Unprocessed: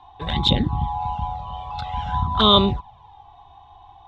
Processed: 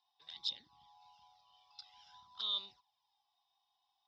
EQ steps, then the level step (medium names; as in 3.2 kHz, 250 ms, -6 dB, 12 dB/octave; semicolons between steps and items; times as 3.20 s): band-pass filter 5.1 kHz, Q 15; +2.0 dB